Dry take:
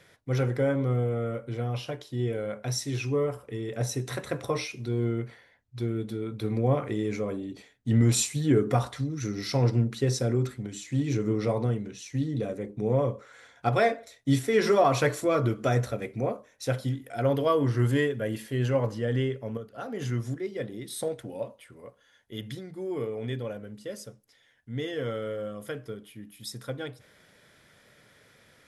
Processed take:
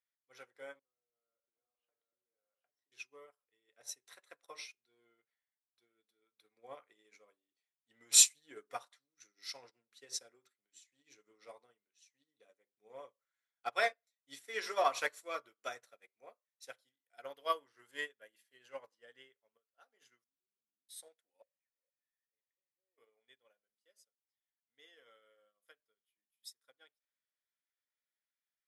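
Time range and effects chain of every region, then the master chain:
0.79–2.92 s: low-pass 1.4 kHz + compression 12:1, threshold -39 dBFS + delay 775 ms -4.5 dB
20.24–20.89 s: compression 2.5:1, threshold -37 dBFS + Butterworth band-pass 200 Hz, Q 1.7
21.42–22.98 s: zero-crossing glitches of -29.5 dBFS + cascade formant filter e
whole clip: high-pass 530 Hz 12 dB/octave; tilt shelf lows -6.5 dB, about 930 Hz; upward expansion 2.5:1, over -47 dBFS

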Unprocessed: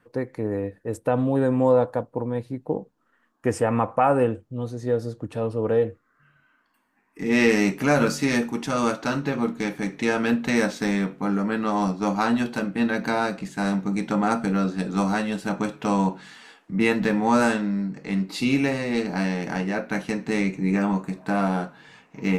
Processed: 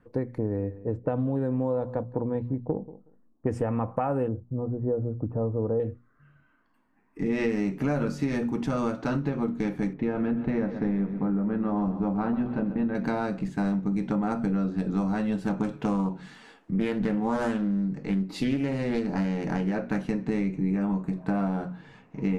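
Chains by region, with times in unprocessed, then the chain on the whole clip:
0.38–3.52 s: level-controlled noise filter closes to 470 Hz, open at -17 dBFS + feedback delay 184 ms, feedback 15%, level -21 dB
4.28–5.80 s: block-companded coder 7-bit + low-pass 1.2 kHz 24 dB/octave
9.93–12.95 s: tape spacing loss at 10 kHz 33 dB + feedback delay 130 ms, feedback 55%, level -12.5 dB
15.41–20.08 s: treble shelf 5 kHz +6 dB + loudspeaker Doppler distortion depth 0.28 ms
whole clip: tilt EQ -3 dB/octave; hum notches 60/120/180/240 Hz; compression, threshold -21 dBFS; trim -2.5 dB

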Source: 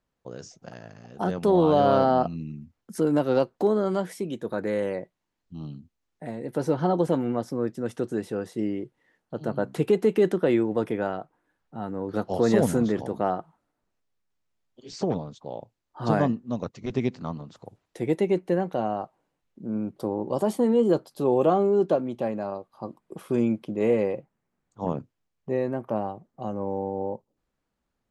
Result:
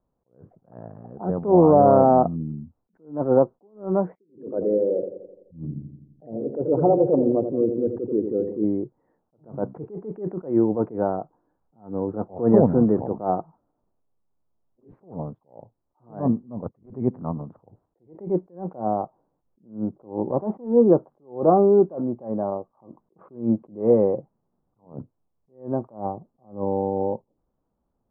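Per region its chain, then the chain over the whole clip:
4.15–8.64 s: resonances exaggerated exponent 2 + feedback echo behind a low-pass 85 ms, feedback 57%, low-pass 650 Hz, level -7 dB
whole clip: inverse Chebyshev low-pass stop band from 4.5 kHz, stop band 70 dB; attacks held to a fixed rise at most 170 dB/s; trim +5.5 dB

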